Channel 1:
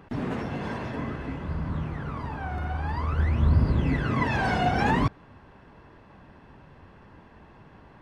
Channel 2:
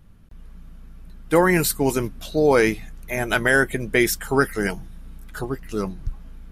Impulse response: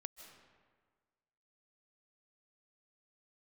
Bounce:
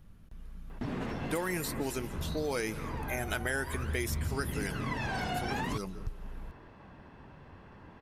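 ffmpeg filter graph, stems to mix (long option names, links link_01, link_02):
-filter_complex "[0:a]adelay=700,volume=-1.5dB[link_01];[1:a]volume=-6.5dB,asplit=3[link_02][link_03][link_04];[link_03]volume=-5dB[link_05];[link_04]volume=-19dB[link_06];[2:a]atrim=start_sample=2205[link_07];[link_05][link_07]afir=irnorm=-1:irlink=0[link_08];[link_06]aecho=0:1:171:1[link_09];[link_01][link_02][link_08][link_09]amix=inputs=4:normalize=0,acrossover=split=2500|5000[link_10][link_11][link_12];[link_10]acompressor=threshold=-33dB:ratio=4[link_13];[link_11]acompressor=threshold=-45dB:ratio=4[link_14];[link_12]acompressor=threshold=-42dB:ratio=4[link_15];[link_13][link_14][link_15]amix=inputs=3:normalize=0"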